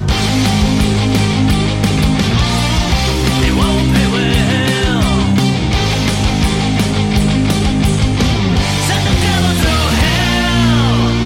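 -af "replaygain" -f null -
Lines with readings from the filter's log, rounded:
track_gain = -2.9 dB
track_peak = 0.503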